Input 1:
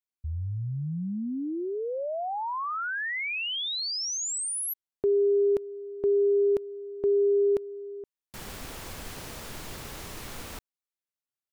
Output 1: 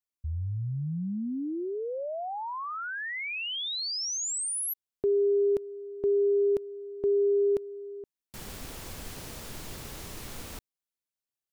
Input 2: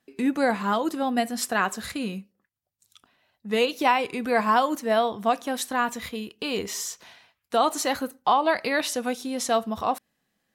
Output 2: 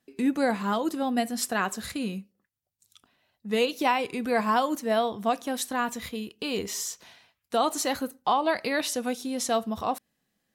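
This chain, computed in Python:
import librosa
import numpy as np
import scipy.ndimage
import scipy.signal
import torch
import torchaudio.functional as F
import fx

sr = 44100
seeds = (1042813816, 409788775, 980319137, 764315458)

y = fx.peak_eq(x, sr, hz=1300.0, db=-4.0, octaves=2.8)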